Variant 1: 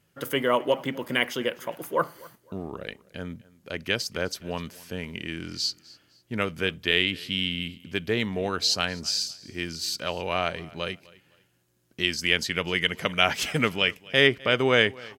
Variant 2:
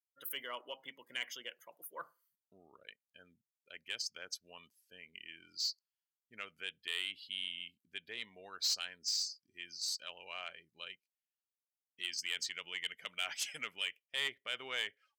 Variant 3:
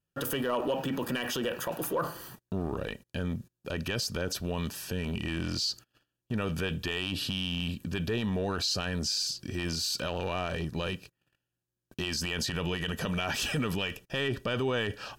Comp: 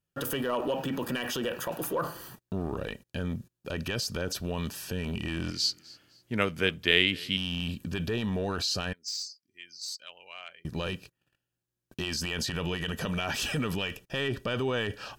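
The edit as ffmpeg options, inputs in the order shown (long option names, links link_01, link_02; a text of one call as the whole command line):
ffmpeg -i take0.wav -i take1.wav -i take2.wav -filter_complex "[2:a]asplit=3[link_01][link_02][link_03];[link_01]atrim=end=5.512[link_04];[0:a]atrim=start=5.508:end=7.372[link_05];[link_02]atrim=start=7.368:end=8.932[link_06];[1:a]atrim=start=8.928:end=10.652[link_07];[link_03]atrim=start=10.648[link_08];[link_04][link_05]acrossfade=duration=0.004:curve1=hsin:curve2=hsin[link_09];[link_09][link_06]acrossfade=duration=0.004:curve1=hsin:curve2=hsin[link_10];[link_10][link_07]acrossfade=duration=0.004:curve1=hsin:curve2=hsin[link_11];[link_11][link_08]acrossfade=duration=0.004:curve1=hsin:curve2=hsin" out.wav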